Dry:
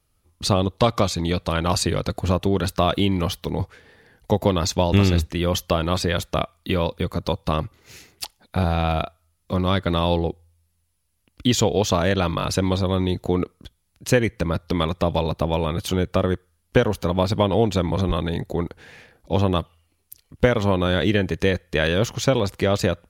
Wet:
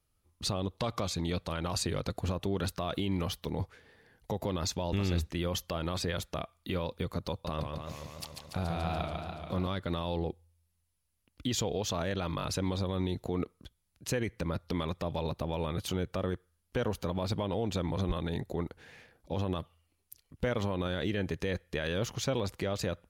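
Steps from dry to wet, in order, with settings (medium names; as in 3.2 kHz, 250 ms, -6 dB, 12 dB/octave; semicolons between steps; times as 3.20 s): peak limiter -13 dBFS, peak gain reduction 8 dB; 7.30–9.67 s: modulated delay 143 ms, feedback 72%, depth 121 cents, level -4.5 dB; trim -8.5 dB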